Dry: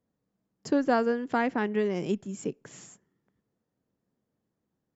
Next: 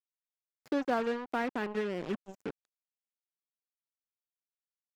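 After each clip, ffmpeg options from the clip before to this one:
-filter_complex "[0:a]acrusher=bits=4:mix=0:aa=0.5,lowshelf=f=130:g=-7,acrossover=split=3900[a][b];[b]acompressor=threshold=-54dB:ratio=4:attack=1:release=60[c];[a][c]amix=inputs=2:normalize=0,volume=-5.5dB"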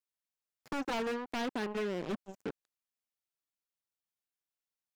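-af "aeval=exprs='0.0355*(abs(mod(val(0)/0.0355+3,4)-2)-1)':c=same"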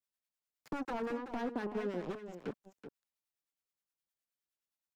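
-filter_complex "[0:a]acrossover=split=430|1700[a][b][c];[c]acompressor=threshold=-54dB:ratio=6[d];[a][b][d]amix=inputs=3:normalize=0,acrossover=split=890[e][f];[e]aeval=exprs='val(0)*(1-0.7/2+0.7/2*cos(2*PI*9.6*n/s))':c=same[g];[f]aeval=exprs='val(0)*(1-0.7/2-0.7/2*cos(2*PI*9.6*n/s))':c=same[h];[g][h]amix=inputs=2:normalize=0,aecho=1:1:379:0.299,volume=1dB"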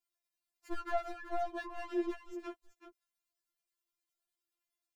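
-af "afftfilt=real='re*4*eq(mod(b,16),0)':imag='im*4*eq(mod(b,16),0)':win_size=2048:overlap=0.75,volume=4dB"

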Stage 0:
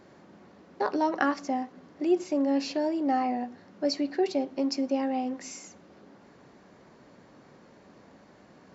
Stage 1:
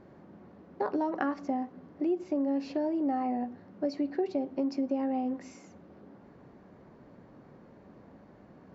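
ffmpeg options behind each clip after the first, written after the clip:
-af "lowpass=f=1.1k:p=1,lowshelf=f=150:g=6.5,acompressor=threshold=-26dB:ratio=6"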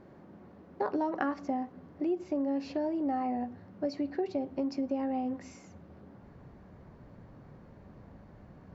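-af "asubboost=boost=4:cutoff=130"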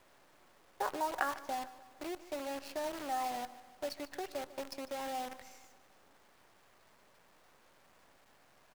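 -af "highpass=780,acrusher=bits=8:dc=4:mix=0:aa=0.000001,aecho=1:1:149|298|447|596|745:0.141|0.0735|0.0382|0.0199|0.0103,volume=1.5dB"

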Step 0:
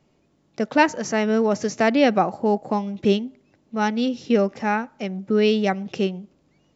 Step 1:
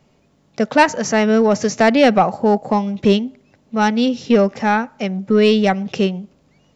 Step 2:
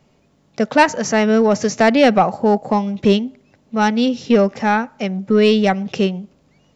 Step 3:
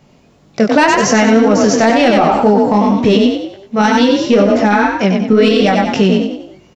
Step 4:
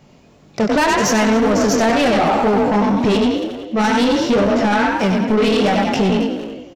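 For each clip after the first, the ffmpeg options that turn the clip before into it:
-af "equalizer=f=330:w=5.3:g=-9,acontrast=85"
-af anull
-filter_complex "[0:a]flanger=delay=19.5:depth=5.4:speed=2,asplit=2[a][b];[b]asplit=5[c][d][e][f][g];[c]adelay=94,afreqshift=38,volume=-5.5dB[h];[d]adelay=188,afreqshift=76,volume=-13dB[i];[e]adelay=282,afreqshift=114,volume=-20.6dB[j];[f]adelay=376,afreqshift=152,volume=-28.1dB[k];[g]adelay=470,afreqshift=190,volume=-35.6dB[l];[h][i][j][k][l]amix=inputs=5:normalize=0[m];[a][m]amix=inputs=2:normalize=0,alimiter=level_in=12dB:limit=-1dB:release=50:level=0:latency=1,volume=-1dB"
-filter_complex "[0:a]asoftclip=type=tanh:threshold=-11.5dB,asplit=2[a][b];[b]adelay=270,highpass=300,lowpass=3.4k,asoftclip=type=hard:threshold=-19.5dB,volume=-7dB[c];[a][c]amix=inputs=2:normalize=0"

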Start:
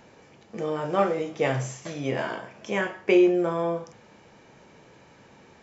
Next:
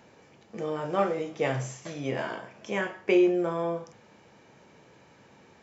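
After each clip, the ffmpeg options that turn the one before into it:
-af "highpass=59,volume=-3dB"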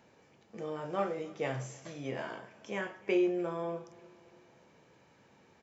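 -af "aecho=1:1:298|596|894|1192:0.0708|0.0382|0.0206|0.0111,volume=-7dB"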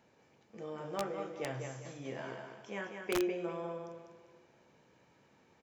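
-af "aecho=1:1:198|396|594|792:0.501|0.17|0.0579|0.0197,aeval=exprs='(mod(10.6*val(0)+1,2)-1)/10.6':c=same,volume=-4.5dB"

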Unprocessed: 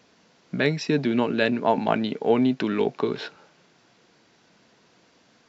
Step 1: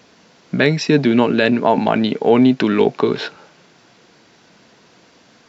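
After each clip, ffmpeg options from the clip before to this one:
-af "alimiter=level_in=10dB:limit=-1dB:release=50:level=0:latency=1,volume=-1dB"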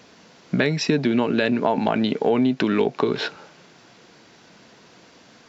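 -af "acompressor=threshold=-17dB:ratio=4"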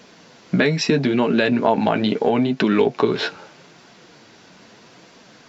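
-af "flanger=delay=4.4:depth=7.3:regen=-34:speed=0.77:shape=triangular,volume=6.5dB"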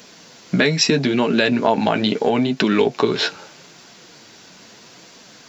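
-af "crystalizer=i=2.5:c=0"

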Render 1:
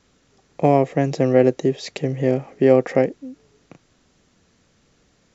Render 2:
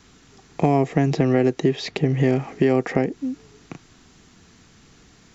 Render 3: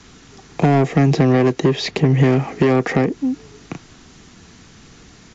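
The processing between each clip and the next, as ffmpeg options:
-filter_complex "[0:a]equalizer=f=550:t=o:w=0.32:g=-12.5,acrossover=split=860|4700[a][b][c];[a]acompressor=threshold=-23dB:ratio=4[d];[b]acompressor=threshold=-38dB:ratio=4[e];[c]acompressor=threshold=-59dB:ratio=4[f];[d][e][f]amix=inputs=3:normalize=0,asplit=2[g][h];[h]alimiter=limit=-19dB:level=0:latency=1:release=227,volume=2dB[i];[g][i]amix=inputs=2:normalize=0,volume=2dB"
-filter_complex "[0:a]acrossover=split=170[a][b];[b]asoftclip=type=tanh:threshold=-19dB[c];[a][c]amix=inputs=2:normalize=0,aresample=16000,aresample=44100,volume=7.5dB" -ar 32000 -c:a aac -b:a 64k

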